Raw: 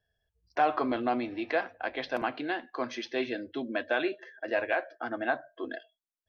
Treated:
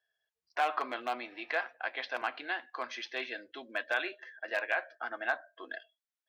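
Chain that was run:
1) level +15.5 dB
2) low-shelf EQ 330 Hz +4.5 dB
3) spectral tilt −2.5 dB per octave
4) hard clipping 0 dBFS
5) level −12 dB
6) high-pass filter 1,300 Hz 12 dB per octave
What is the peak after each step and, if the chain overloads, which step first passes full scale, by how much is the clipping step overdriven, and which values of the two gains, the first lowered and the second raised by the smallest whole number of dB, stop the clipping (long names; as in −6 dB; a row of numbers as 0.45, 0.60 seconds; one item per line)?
+0.5, +1.5, +3.0, 0.0, −12.0, −16.5 dBFS
step 1, 3.0 dB
step 1 +12.5 dB, step 5 −9 dB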